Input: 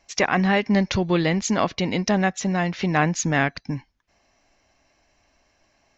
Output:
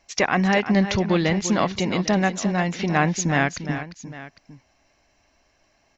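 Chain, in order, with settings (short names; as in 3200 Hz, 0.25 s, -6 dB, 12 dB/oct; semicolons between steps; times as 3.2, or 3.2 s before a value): tapped delay 0.347/0.802 s -11/-17.5 dB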